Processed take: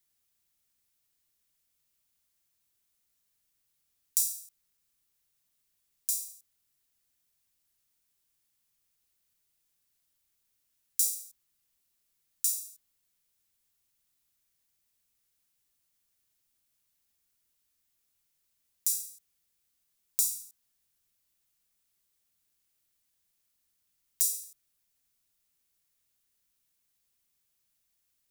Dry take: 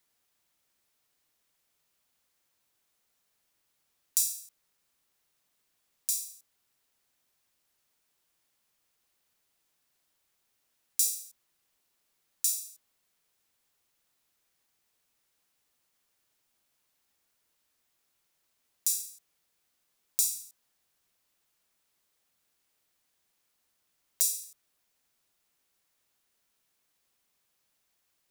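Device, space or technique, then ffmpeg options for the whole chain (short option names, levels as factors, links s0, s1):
smiley-face EQ: -af "lowshelf=f=140:g=8.5,equalizer=f=700:t=o:w=2.3:g=-5.5,highshelf=f=6300:g=7,volume=0.531"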